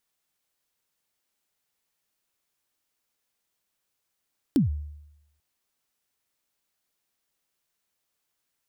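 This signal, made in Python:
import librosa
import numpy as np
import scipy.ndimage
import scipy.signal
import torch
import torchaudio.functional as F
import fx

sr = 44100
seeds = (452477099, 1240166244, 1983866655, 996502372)

y = fx.drum_kick(sr, seeds[0], length_s=0.84, level_db=-15.0, start_hz=320.0, end_hz=74.0, sweep_ms=133.0, decay_s=0.88, click=True)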